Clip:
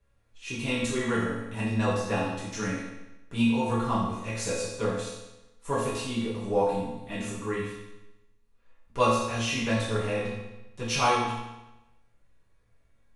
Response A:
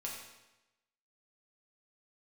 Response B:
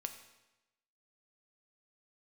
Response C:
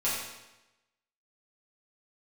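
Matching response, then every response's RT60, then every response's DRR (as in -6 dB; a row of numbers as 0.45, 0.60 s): C; 1.0, 1.0, 1.0 s; -3.5, 6.0, -10.0 dB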